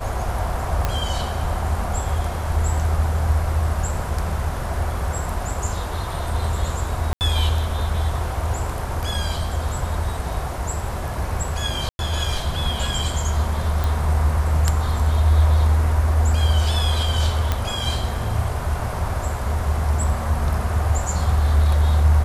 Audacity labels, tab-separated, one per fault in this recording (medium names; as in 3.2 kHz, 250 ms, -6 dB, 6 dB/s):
0.850000	0.850000	pop -7 dBFS
7.130000	7.210000	dropout 79 ms
11.890000	11.990000	dropout 101 ms
13.840000	13.840000	pop
17.520000	17.520000	pop -7 dBFS